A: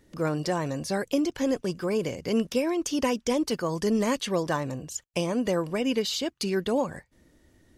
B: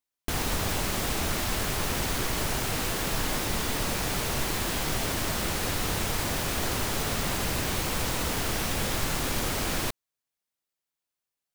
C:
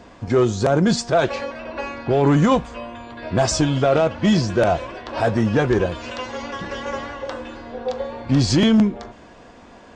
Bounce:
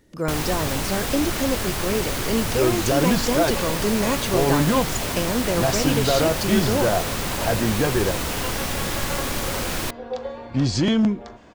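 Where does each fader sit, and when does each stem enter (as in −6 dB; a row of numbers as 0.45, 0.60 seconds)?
+2.0, +2.5, −4.0 decibels; 0.00, 0.00, 2.25 seconds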